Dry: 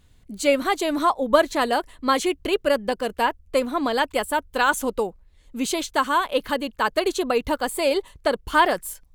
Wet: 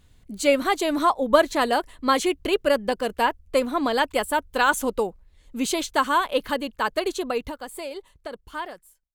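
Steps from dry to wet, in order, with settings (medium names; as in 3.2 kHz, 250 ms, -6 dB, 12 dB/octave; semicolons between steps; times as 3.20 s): fade out at the end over 3.02 s; 7.49–8.32 s: compression 5:1, threshold -31 dBFS, peak gain reduction 7.5 dB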